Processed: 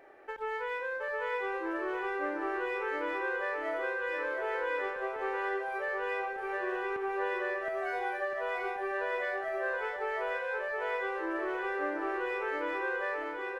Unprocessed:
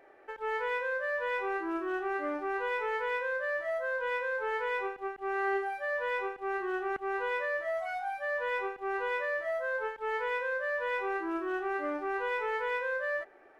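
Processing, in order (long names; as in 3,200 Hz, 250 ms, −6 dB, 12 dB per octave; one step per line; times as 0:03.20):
downward compressor, threshold −35 dBFS, peak gain reduction 8 dB
bouncing-ball delay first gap 720 ms, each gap 0.9×, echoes 5
level +2 dB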